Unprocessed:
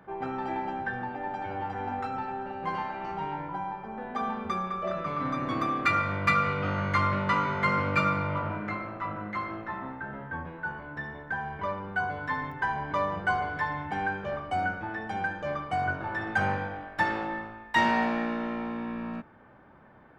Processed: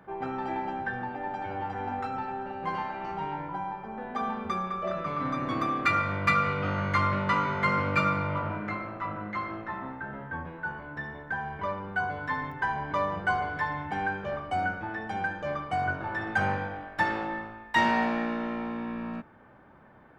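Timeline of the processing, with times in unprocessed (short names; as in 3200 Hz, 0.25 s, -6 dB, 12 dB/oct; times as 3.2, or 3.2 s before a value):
9.07–9.69 steep low-pass 7400 Hz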